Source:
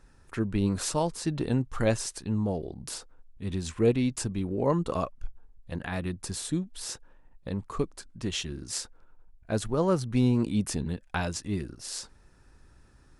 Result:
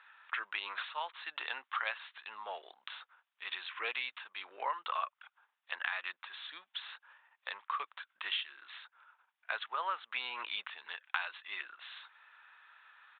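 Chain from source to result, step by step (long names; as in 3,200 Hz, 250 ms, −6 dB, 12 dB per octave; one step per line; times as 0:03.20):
high-pass filter 1,100 Hz 24 dB per octave
downward compressor 5 to 1, threshold −43 dBFS, peak gain reduction 13.5 dB
downsampling to 8,000 Hz
level +10.5 dB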